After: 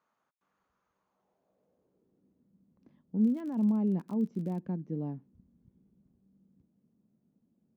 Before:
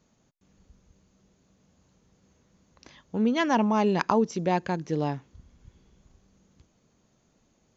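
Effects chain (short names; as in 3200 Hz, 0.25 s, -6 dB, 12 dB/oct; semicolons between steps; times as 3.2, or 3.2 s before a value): limiter -17.5 dBFS, peak gain reduction 9 dB; band-pass sweep 1200 Hz -> 210 Hz, 0.91–2.53; 3.21–4.62 crackle 38/s -42 dBFS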